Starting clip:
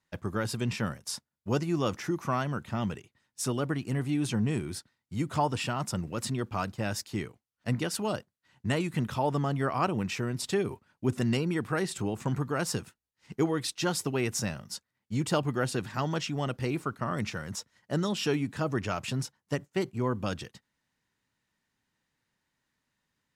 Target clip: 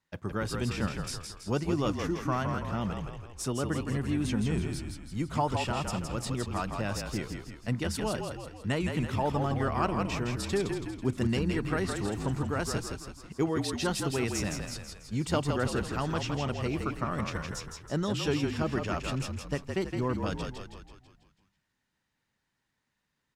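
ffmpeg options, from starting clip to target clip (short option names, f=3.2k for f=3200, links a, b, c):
-filter_complex "[0:a]highshelf=f=9.3k:g=-5.5,asplit=8[a][b][c][d][e][f][g][h];[b]adelay=164,afreqshift=-41,volume=-5dB[i];[c]adelay=328,afreqshift=-82,volume=-10.7dB[j];[d]adelay=492,afreqshift=-123,volume=-16.4dB[k];[e]adelay=656,afreqshift=-164,volume=-22dB[l];[f]adelay=820,afreqshift=-205,volume=-27.7dB[m];[g]adelay=984,afreqshift=-246,volume=-33.4dB[n];[h]adelay=1148,afreqshift=-287,volume=-39.1dB[o];[a][i][j][k][l][m][n][o]amix=inputs=8:normalize=0,volume=-1.5dB"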